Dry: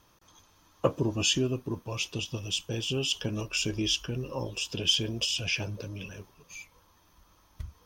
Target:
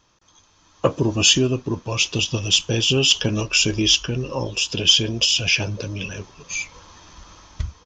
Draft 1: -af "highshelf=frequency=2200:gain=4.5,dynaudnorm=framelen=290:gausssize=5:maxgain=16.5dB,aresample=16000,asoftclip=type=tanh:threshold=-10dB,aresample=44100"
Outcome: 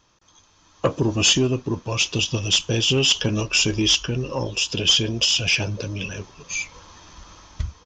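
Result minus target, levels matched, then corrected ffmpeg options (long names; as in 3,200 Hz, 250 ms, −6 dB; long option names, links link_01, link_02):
soft clipping: distortion +11 dB
-af "highshelf=frequency=2200:gain=4.5,dynaudnorm=framelen=290:gausssize=5:maxgain=16.5dB,aresample=16000,asoftclip=type=tanh:threshold=-2dB,aresample=44100"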